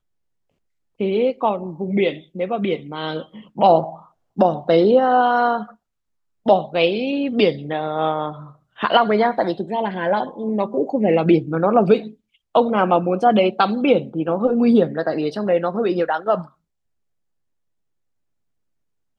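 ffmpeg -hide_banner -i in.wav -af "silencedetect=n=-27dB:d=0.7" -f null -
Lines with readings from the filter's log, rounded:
silence_start: 0.00
silence_end: 1.00 | silence_duration: 1.00
silence_start: 5.63
silence_end: 6.46 | silence_duration: 0.83
silence_start: 16.42
silence_end: 19.19 | silence_duration: 2.77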